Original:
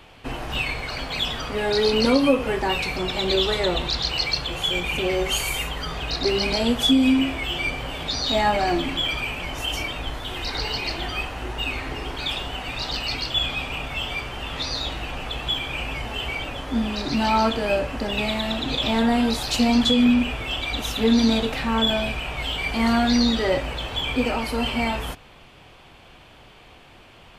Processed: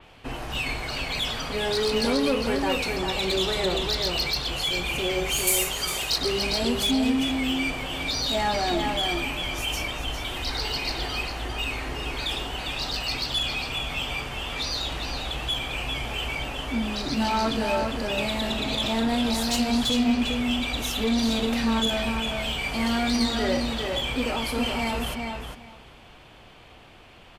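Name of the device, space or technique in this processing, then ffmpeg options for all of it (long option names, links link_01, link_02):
saturation between pre-emphasis and de-emphasis: -filter_complex "[0:a]highshelf=frequency=4500:gain=8,asoftclip=type=tanh:threshold=-16.5dB,highshelf=frequency=4500:gain=-8,asettb=1/sr,asplit=3[link_01][link_02][link_03];[link_01]atrim=end=5.474[link_04];[link_02]atrim=start=5.47:end=6.18,asetpts=PTS-STARTPTS,afade=type=in:duration=0.004:curve=qsin,afade=type=out:start_time=0.706:duration=0.004:curve=qsin,bass=frequency=250:gain=-7,treble=frequency=4000:gain=10[link_05];[link_03]atrim=start=6.176[link_06];[link_04][link_05]acrossfade=duration=0.004:curve1=hsin:curve2=qsin[link_07];[link_07][link_06]acrossfade=duration=0.004:curve1=qsin:curve2=hsin,asplit=2[link_08][link_09];[link_09]adelay=403,lowpass=frequency=4400:poles=1,volume=-4dB,asplit=2[link_10][link_11];[link_11]adelay=403,lowpass=frequency=4400:poles=1,volume=0.17,asplit=2[link_12][link_13];[link_13]adelay=403,lowpass=frequency=4400:poles=1,volume=0.17[link_14];[link_08][link_10][link_12][link_14]amix=inputs=4:normalize=0,adynamicequalizer=threshold=0.00891:dfrequency=4500:dqfactor=0.7:tfrequency=4500:tqfactor=0.7:attack=5:release=100:ratio=0.375:range=3:mode=boostabove:tftype=highshelf,volume=-2.5dB"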